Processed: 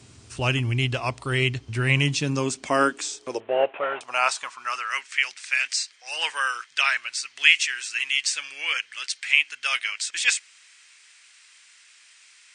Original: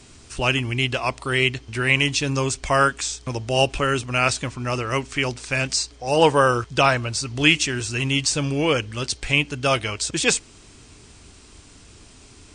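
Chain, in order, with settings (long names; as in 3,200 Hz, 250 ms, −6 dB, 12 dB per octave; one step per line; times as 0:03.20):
0:03.40–0:04.01: variable-slope delta modulation 16 kbit/s
high-pass filter sweep 100 Hz → 1,900 Hz, 0:01.66–0:05.14
level −4 dB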